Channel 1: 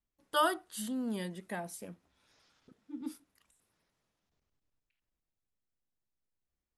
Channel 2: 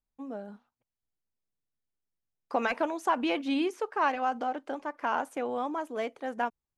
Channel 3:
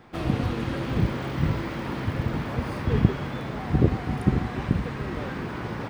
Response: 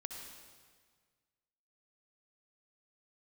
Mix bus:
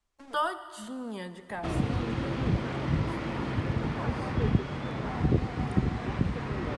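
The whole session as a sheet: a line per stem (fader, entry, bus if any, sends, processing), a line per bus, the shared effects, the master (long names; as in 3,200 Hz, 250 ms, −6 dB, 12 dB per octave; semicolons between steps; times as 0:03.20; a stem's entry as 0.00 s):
−4.5 dB, 0.00 s, send −6.5 dB, octave-band graphic EQ 125/250/1,000 Hz −5/−5/+5 dB
−18.5 dB, 0.00 s, no send, centre clipping without the shift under −39 dBFS
−3.5 dB, 1.50 s, no send, notch filter 1,600 Hz, Q 30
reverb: on, RT60 1.7 s, pre-delay 57 ms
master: low-pass filter 9,100 Hz 24 dB per octave; multiband upward and downward compressor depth 40%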